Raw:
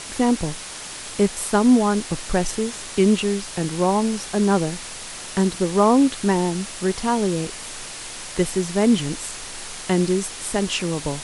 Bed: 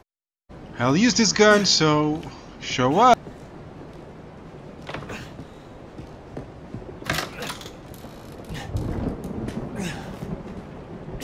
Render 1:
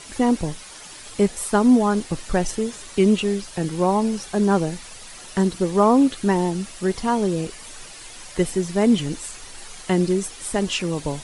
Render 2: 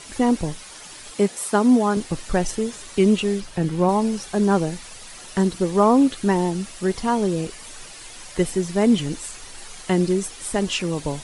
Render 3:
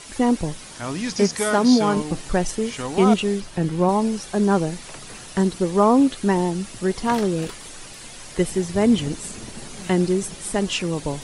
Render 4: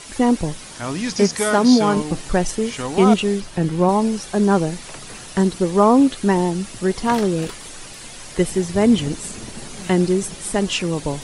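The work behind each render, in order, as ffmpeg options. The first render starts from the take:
-af "afftdn=nr=9:nf=-35"
-filter_complex "[0:a]asettb=1/sr,asplit=3[s0][s1][s2];[s0]atrim=end=1.114[s3];[s1]atrim=start=1.11:end=1.97,asetpts=PTS-STARTPTS,afade=t=in:d=0.004:c=qsin,afade=t=out:st=0.856:d=0.004:c=qsin,highpass=170[s4];[s2]atrim=start=1.966[s5];[s3][s4]acrossfade=d=0.004:c1=hsin:c2=qsin[s6];[s6][s5]acrossfade=d=0.004:c1=qsin:c2=hsin,asettb=1/sr,asplit=3[s7][s8][s9];[s7]atrim=end=3.404[s10];[s8]atrim=start=3.4:end=3.89,asetpts=PTS-STARTPTS,afade=t=in:d=0.004:c=qsin,afade=t=out:st=0.486:d=0.004:c=qsin,bass=f=250:g=4,treble=f=4000:g=-6[s11];[s9]atrim=start=3.886[s12];[s10][s11]acrossfade=d=0.004:c1=hsin:c2=qsin[s13];[s13][s12]acrossfade=d=0.004:c1=qsin:c2=hsin"
-filter_complex "[1:a]volume=0.355[s0];[0:a][s0]amix=inputs=2:normalize=0"
-af "volume=1.33"

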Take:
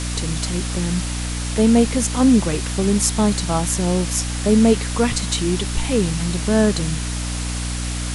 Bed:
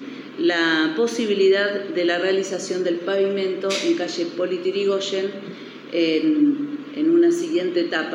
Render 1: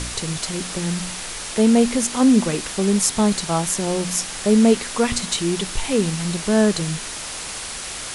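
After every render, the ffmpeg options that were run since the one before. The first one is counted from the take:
-af "bandreject=f=60:t=h:w=4,bandreject=f=120:t=h:w=4,bandreject=f=180:t=h:w=4,bandreject=f=240:t=h:w=4,bandreject=f=300:t=h:w=4"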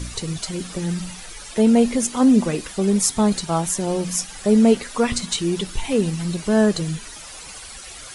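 -af "afftdn=nr=12:nf=-31"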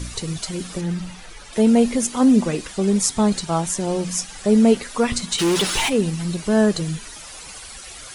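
-filter_complex "[0:a]asettb=1/sr,asplit=3[s0][s1][s2];[s0]atrim=end=0.814[s3];[s1]atrim=start=0.81:end=1.53,asetpts=PTS-STARTPTS,afade=t=in:d=0.004:c=qsin,afade=t=out:st=0.716:d=0.004:c=qsin,lowpass=f=3100:p=1[s4];[s2]atrim=start=1.526[s5];[s3][s4]acrossfade=d=0.004:c1=hsin:c2=qsin[s6];[s6][s5]acrossfade=d=0.004:c1=qsin:c2=hsin,asettb=1/sr,asplit=3[s7][s8][s9];[s7]atrim=end=2.414[s10];[s8]atrim=start=2.41:end=4.52,asetpts=PTS-STARTPTS,afade=t=in:d=0.004:c=qsin,afade=t=out:st=2.106:d=0.004:c=qsin,lowpass=f=10000:w=0.5412,lowpass=f=10000:w=1.3066[s11];[s9]atrim=start=4.516[s12];[s10][s11]acrossfade=d=0.004:c1=hsin:c2=qsin[s13];[s13][s12]acrossfade=d=0.004:c1=qsin:c2=hsin,asplit=3[s14][s15][s16];[s14]afade=t=out:st=5.38:d=0.02[s17];[s15]asplit=2[s18][s19];[s19]highpass=f=720:p=1,volume=17.8,asoftclip=type=tanh:threshold=0.266[s20];[s18][s20]amix=inputs=2:normalize=0,lowpass=f=6600:p=1,volume=0.501,afade=t=in:st=5.38:d=0.02,afade=t=out:st=5.88:d=0.02[s21];[s16]afade=t=in:st=5.88:d=0.02[s22];[s17][s21][s22]amix=inputs=3:normalize=0"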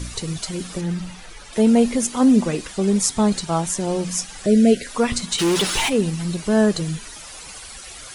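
-filter_complex "[0:a]asettb=1/sr,asplit=3[s0][s1][s2];[s0]atrim=end=4.464[s3];[s1]atrim=start=4.46:end=4.87,asetpts=PTS-STARTPTS,afade=t=in:d=0.004:c=qsin,afade=t=out:st=0.406:d=0.004:c=qsin,asuperstop=centerf=1000:order=20:qfactor=1.4[s4];[s2]atrim=start=4.866[s5];[s3][s4]acrossfade=d=0.004:c1=hsin:c2=qsin[s6];[s6][s5]acrossfade=d=0.004:c1=qsin:c2=hsin"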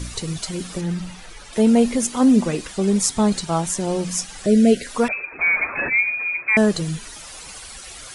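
-filter_complex "[0:a]asettb=1/sr,asplit=3[s0][s1][s2];[s0]atrim=end=5.084[s3];[s1]atrim=start=5.08:end=6.57,asetpts=PTS-STARTPTS,afade=t=in:d=0.004:c=qsin,afade=t=out:st=1.486:d=0.004:c=qsin,lowpass=f=2200:t=q:w=0.5098,lowpass=f=2200:t=q:w=0.6013,lowpass=f=2200:t=q:w=0.9,lowpass=f=2200:t=q:w=2.563,afreqshift=-2600[s4];[s2]atrim=start=6.566[s5];[s3][s4]acrossfade=d=0.004:c1=hsin:c2=qsin[s6];[s6][s5]acrossfade=d=0.004:c1=qsin:c2=hsin"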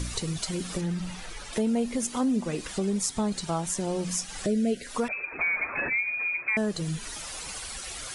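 -af "acompressor=threshold=0.0355:ratio=2.5"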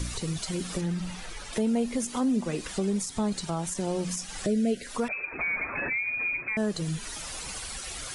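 -filter_complex "[0:a]acrossover=split=320[s0][s1];[s0]acompressor=mode=upward:threshold=0.0112:ratio=2.5[s2];[s1]alimiter=limit=0.075:level=0:latency=1:release=45[s3];[s2][s3]amix=inputs=2:normalize=0"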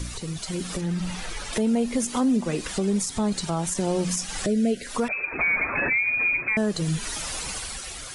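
-af "alimiter=limit=0.0841:level=0:latency=1:release=390,dynaudnorm=f=210:g=7:m=2.11"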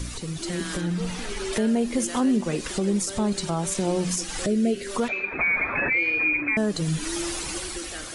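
-filter_complex "[1:a]volume=0.141[s0];[0:a][s0]amix=inputs=2:normalize=0"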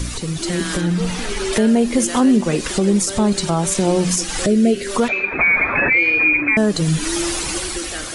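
-af "volume=2.51"

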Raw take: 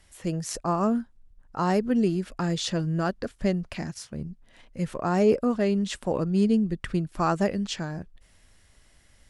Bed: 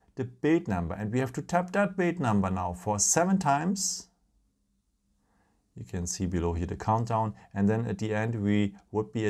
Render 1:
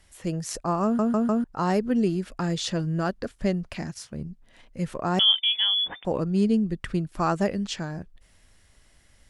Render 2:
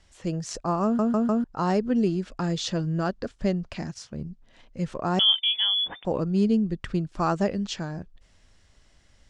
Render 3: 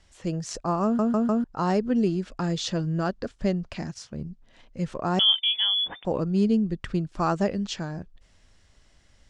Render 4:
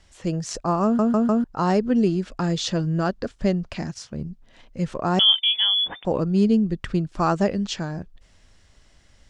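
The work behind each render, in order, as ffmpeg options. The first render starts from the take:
-filter_complex "[0:a]asettb=1/sr,asplit=3[s0][s1][s2];[s0]atrim=end=5.194[s3];[s1]atrim=start=5.19:end=6.05,asetpts=PTS-STARTPTS,afade=t=in:d=0.004:c=qsin,afade=t=out:st=0.856:d=0.004:c=qsin,lowpass=f=3100:t=q:w=0.5098,lowpass=f=3100:t=q:w=0.6013,lowpass=f=3100:t=q:w=0.9,lowpass=f=3100:t=q:w=2.563,afreqshift=-3600[s4];[s2]atrim=start=6.046[s5];[s3][s4]acrossfade=d=0.004:c1=hsin:c2=qsin[s6];[s6][s5]acrossfade=d=0.004:c1=qsin:c2=hsin,asplit=5[s7][s8][s9][s10][s11];[s7]atrim=end=0.992[s12];[s8]atrim=start=0.838:end=0.992[s13];[s9]atrim=start=0.838:end=0.992[s14];[s10]atrim=start=0.838:end=0.992[s15];[s11]atrim=start=1.438[s16];[s12][s13]acrossfade=d=0.004:c1=hsin:c2=hsin[s17];[s17][s14]acrossfade=d=0.004:c1=hsin:c2=hsin[s18];[s18][s15]acrossfade=d=0.004:c1=hsin:c2=hsin[s19];[s19][s16]acrossfade=d=0.004:c1=hsin:c2=hsin"
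-af "lowpass=f=7400:w=0.5412,lowpass=f=7400:w=1.3066,equalizer=f=2000:w=1.8:g=-3"
-af anull
-af "volume=1.5"

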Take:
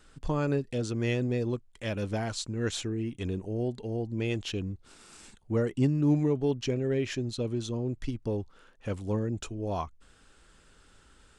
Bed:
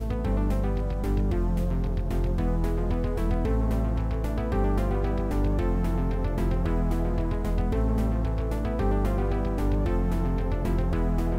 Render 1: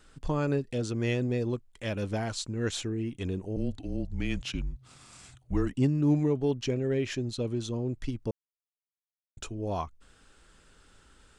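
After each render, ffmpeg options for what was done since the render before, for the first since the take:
-filter_complex "[0:a]asettb=1/sr,asplit=3[s0][s1][s2];[s0]atrim=end=3.564[s3];[s1]atrim=start=3.56:end=5.73,asetpts=PTS-STARTPTS,afade=t=in:d=0.004:c=qsin,afade=t=out:st=2.166:d=0.004:c=qsin,afreqshift=-140[s4];[s2]atrim=start=5.726[s5];[s3][s4]acrossfade=d=0.004:c1=hsin:c2=qsin[s6];[s6][s5]acrossfade=d=0.004:c1=qsin:c2=hsin,asplit=3[s7][s8][s9];[s7]atrim=end=8.31,asetpts=PTS-STARTPTS,afade=t=out:st=8.306:d=0.004:c=hsin[s10];[s8]atrim=start=8.31:end=9.37,asetpts=PTS-STARTPTS,volume=0[s11];[s9]atrim=start=9.37,asetpts=PTS-STARTPTS,afade=t=in:d=0.004:c=hsin[s12];[s10][s11][s12]concat=n=3:v=0:a=1"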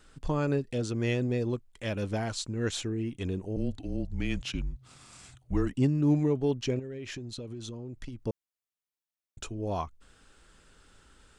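-filter_complex "[0:a]asettb=1/sr,asplit=3[s0][s1][s2];[s0]atrim=end=6.794[s3];[s1]atrim=start=6.79:end=8.21,asetpts=PTS-STARTPTS,afade=t=in:d=0.004:c=qsin,afade=t=out:st=1.416:d=0.004:c=qsin,acompressor=threshold=0.0178:ratio=16:attack=3.2:release=140:knee=1:detection=peak[s4];[s2]atrim=start=8.206[s5];[s3][s4]acrossfade=d=0.004:c1=hsin:c2=qsin[s6];[s6][s5]acrossfade=d=0.004:c1=qsin:c2=hsin"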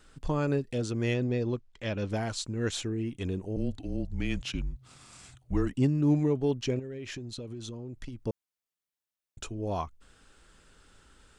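-filter_complex "[0:a]asettb=1/sr,asplit=3[s0][s1][s2];[s0]atrim=end=1.144[s3];[s1]atrim=start=1.14:end=2.1,asetpts=PTS-STARTPTS,afade=t=in:d=0.004:c=qsin,afade=t=out:st=0.956:d=0.004:c=qsin,lowpass=f=6300:w=0.5412,lowpass=f=6300:w=1.3066[s4];[s2]atrim=start=2.096[s5];[s3][s4]acrossfade=d=0.004:c1=hsin:c2=qsin[s6];[s6][s5]acrossfade=d=0.004:c1=qsin:c2=hsin"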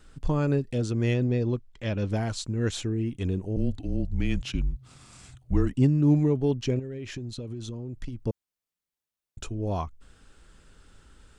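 -af "lowshelf=f=250:g=7"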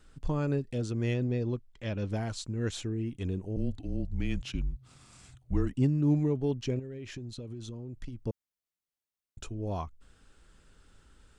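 -af "volume=0.562"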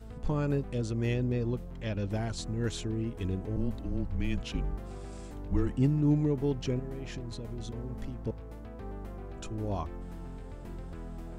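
-filter_complex "[1:a]volume=0.15[s0];[0:a][s0]amix=inputs=2:normalize=0"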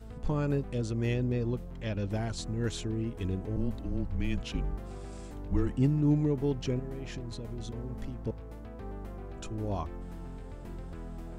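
-af anull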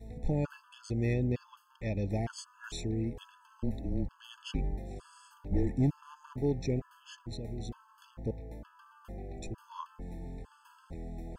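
-af "asoftclip=type=hard:threshold=0.0944,afftfilt=real='re*gt(sin(2*PI*1.1*pts/sr)*(1-2*mod(floor(b*sr/1024/870),2)),0)':imag='im*gt(sin(2*PI*1.1*pts/sr)*(1-2*mod(floor(b*sr/1024/870),2)),0)':win_size=1024:overlap=0.75"

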